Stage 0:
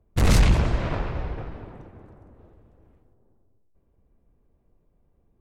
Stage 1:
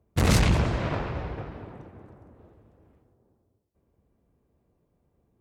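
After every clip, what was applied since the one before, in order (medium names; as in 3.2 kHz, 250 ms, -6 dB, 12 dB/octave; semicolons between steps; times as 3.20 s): high-pass 71 Hz 12 dB/octave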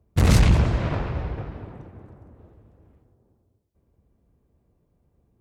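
bass shelf 150 Hz +7.5 dB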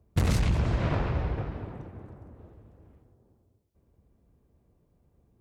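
compression 6:1, threshold -21 dBFS, peak gain reduction 10 dB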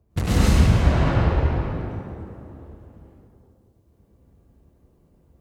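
plate-style reverb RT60 1.4 s, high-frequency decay 0.85×, pre-delay 90 ms, DRR -7.5 dB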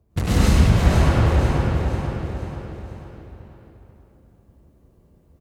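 feedback delay 488 ms, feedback 45%, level -6 dB; trim +1 dB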